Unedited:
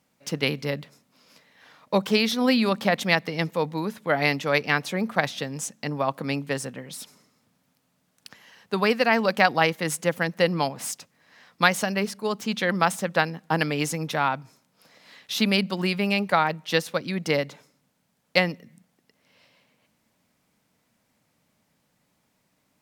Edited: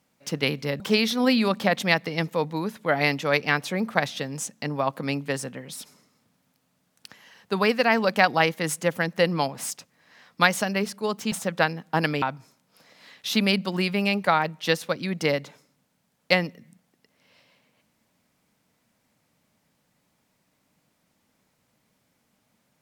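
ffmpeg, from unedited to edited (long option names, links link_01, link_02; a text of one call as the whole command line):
ffmpeg -i in.wav -filter_complex "[0:a]asplit=4[link_01][link_02][link_03][link_04];[link_01]atrim=end=0.802[link_05];[link_02]atrim=start=2.008:end=12.532[link_06];[link_03]atrim=start=12.888:end=13.792[link_07];[link_04]atrim=start=14.268[link_08];[link_05][link_06]acrossfade=duration=0.004:curve1=hsin:curve2=hsin[link_09];[link_09][link_07]acrossfade=duration=0.004:curve1=hsin:curve2=hsin[link_10];[link_10][link_08]acrossfade=duration=0.004:curve1=hsin:curve2=hsin" out.wav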